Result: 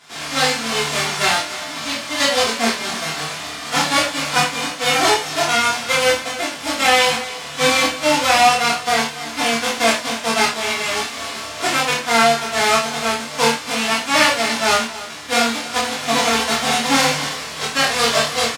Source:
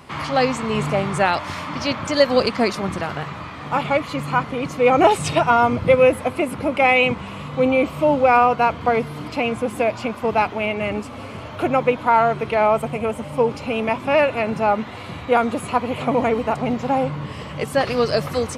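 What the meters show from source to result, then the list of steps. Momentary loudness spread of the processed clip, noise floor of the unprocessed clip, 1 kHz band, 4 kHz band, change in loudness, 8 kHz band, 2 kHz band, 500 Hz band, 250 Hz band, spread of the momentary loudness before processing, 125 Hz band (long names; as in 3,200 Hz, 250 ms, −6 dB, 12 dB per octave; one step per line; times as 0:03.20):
9 LU, −34 dBFS, +1.0 dB, +13.0 dB, +2.5 dB, +17.0 dB, +6.5 dB, −3.5 dB, −2.5 dB, 12 LU, −5.5 dB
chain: spectral envelope flattened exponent 0.1
automatic gain control
high-pass filter 310 Hz 6 dB per octave
high-frequency loss of the air 92 metres
double-tracking delay 26 ms −3 dB
on a send: single-tap delay 284 ms −16 dB
on the sum: reverb whose tail is shaped and stops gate 120 ms falling, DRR −7 dB
level −5 dB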